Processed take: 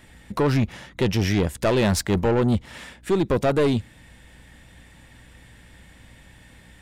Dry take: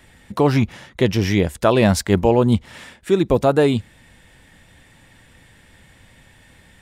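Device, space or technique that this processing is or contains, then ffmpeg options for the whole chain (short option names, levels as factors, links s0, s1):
valve amplifier with mains hum: -af "aeval=exprs='(tanh(5.62*val(0)+0.3)-tanh(0.3))/5.62':c=same,aeval=exprs='val(0)+0.00251*(sin(2*PI*60*n/s)+sin(2*PI*2*60*n/s)/2+sin(2*PI*3*60*n/s)/3+sin(2*PI*4*60*n/s)/4+sin(2*PI*5*60*n/s)/5)':c=same"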